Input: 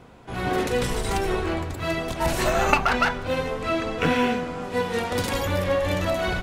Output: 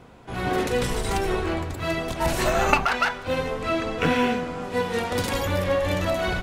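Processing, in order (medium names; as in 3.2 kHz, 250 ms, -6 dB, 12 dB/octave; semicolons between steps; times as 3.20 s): 2.85–3.27 s: bass shelf 380 Hz -11 dB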